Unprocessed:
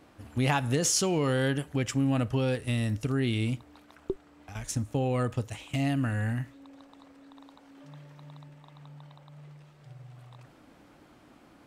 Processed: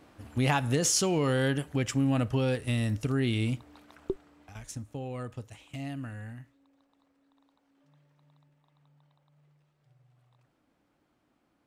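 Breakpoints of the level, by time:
0:04.11 0 dB
0:04.84 −9.5 dB
0:05.98 −9.5 dB
0:06.70 −16.5 dB

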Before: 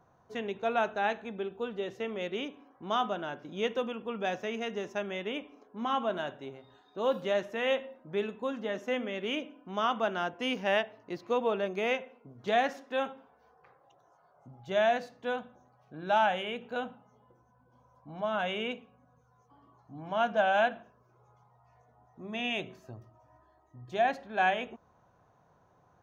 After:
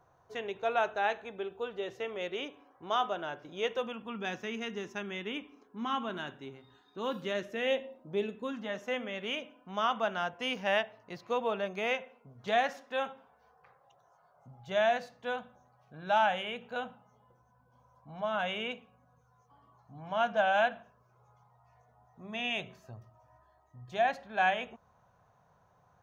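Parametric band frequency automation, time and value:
parametric band −11 dB 0.75 octaves
0:03.67 220 Hz
0:04.23 610 Hz
0:07.19 610 Hz
0:08.10 1,900 Hz
0:08.75 320 Hz

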